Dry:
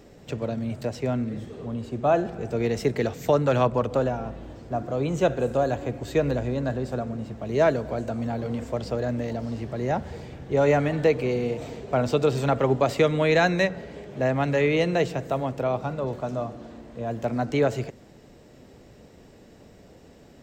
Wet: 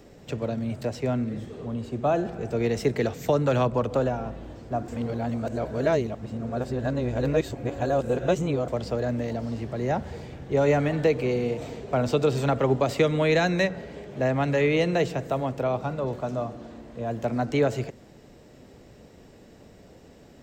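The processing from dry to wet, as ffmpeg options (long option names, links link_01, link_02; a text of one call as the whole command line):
ffmpeg -i in.wav -filter_complex "[0:a]asplit=3[link_01][link_02][link_03];[link_01]atrim=end=4.882[link_04];[link_02]atrim=start=4.878:end=8.682,asetpts=PTS-STARTPTS,areverse[link_05];[link_03]atrim=start=8.678[link_06];[link_04][link_05]acrossfade=duration=0.004:curve1=hsin:curve2=hsin[link_07];[link_07][link_06]acrossfade=duration=0.004:curve1=hsin:curve2=hsin,acrossover=split=430|3000[link_08][link_09][link_10];[link_09]acompressor=threshold=-22dB:ratio=6[link_11];[link_08][link_11][link_10]amix=inputs=3:normalize=0" out.wav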